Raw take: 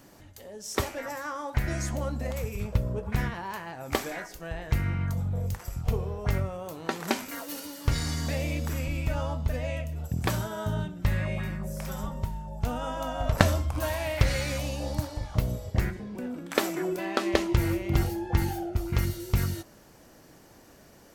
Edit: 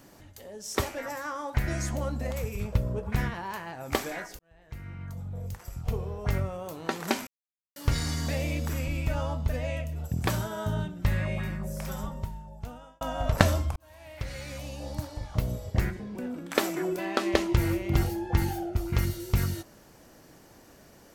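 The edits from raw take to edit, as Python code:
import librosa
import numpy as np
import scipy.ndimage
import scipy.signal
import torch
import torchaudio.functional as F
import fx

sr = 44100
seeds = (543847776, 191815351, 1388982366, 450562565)

y = fx.edit(x, sr, fx.fade_in_span(start_s=4.39, length_s=2.12),
    fx.silence(start_s=7.27, length_s=0.49),
    fx.fade_out_span(start_s=11.92, length_s=1.09),
    fx.fade_in_span(start_s=13.76, length_s=1.98), tone=tone)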